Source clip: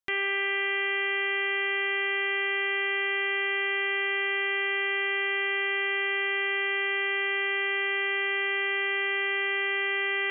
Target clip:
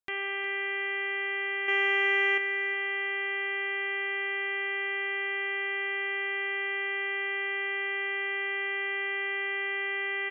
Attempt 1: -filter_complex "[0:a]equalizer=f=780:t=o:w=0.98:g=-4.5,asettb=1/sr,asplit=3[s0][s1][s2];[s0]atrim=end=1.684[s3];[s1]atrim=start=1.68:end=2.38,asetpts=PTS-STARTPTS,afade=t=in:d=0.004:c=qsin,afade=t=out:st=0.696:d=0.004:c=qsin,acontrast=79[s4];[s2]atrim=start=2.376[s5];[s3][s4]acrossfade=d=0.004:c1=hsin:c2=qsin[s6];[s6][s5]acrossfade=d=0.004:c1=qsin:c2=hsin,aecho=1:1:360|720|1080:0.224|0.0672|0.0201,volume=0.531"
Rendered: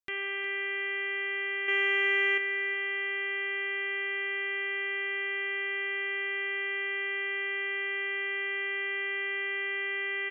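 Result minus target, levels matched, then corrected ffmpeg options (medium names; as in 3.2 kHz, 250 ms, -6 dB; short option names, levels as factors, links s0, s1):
1 kHz band -4.5 dB
-filter_complex "[0:a]equalizer=f=780:t=o:w=0.98:g=4,asettb=1/sr,asplit=3[s0][s1][s2];[s0]atrim=end=1.684[s3];[s1]atrim=start=1.68:end=2.38,asetpts=PTS-STARTPTS,afade=t=in:d=0.004:c=qsin,afade=t=out:st=0.696:d=0.004:c=qsin,acontrast=79[s4];[s2]atrim=start=2.376[s5];[s3][s4]acrossfade=d=0.004:c1=hsin:c2=qsin[s6];[s6][s5]acrossfade=d=0.004:c1=qsin:c2=hsin,aecho=1:1:360|720|1080:0.224|0.0672|0.0201,volume=0.531"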